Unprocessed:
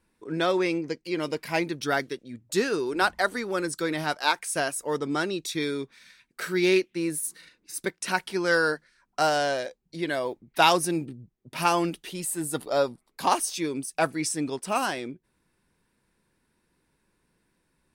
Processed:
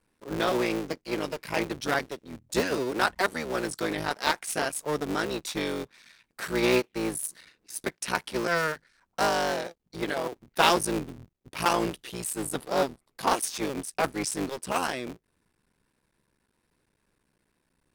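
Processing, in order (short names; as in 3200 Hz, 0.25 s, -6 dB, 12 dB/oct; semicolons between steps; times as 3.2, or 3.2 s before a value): cycle switcher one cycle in 3, muted; vibrato 1.2 Hz 8.1 cents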